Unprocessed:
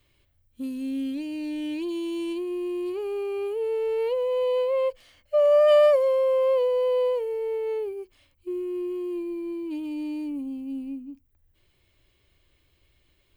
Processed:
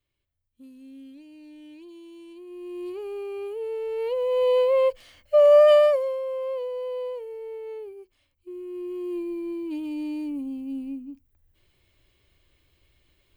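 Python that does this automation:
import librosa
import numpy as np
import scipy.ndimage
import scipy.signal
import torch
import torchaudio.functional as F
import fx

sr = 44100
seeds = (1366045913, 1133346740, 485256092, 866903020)

y = fx.gain(x, sr, db=fx.line((2.31, -15.5), (2.84, -4.0), (3.9, -4.0), (4.5, 4.0), (5.6, 4.0), (6.21, -8.0), (8.51, -8.0), (9.14, 0.5)))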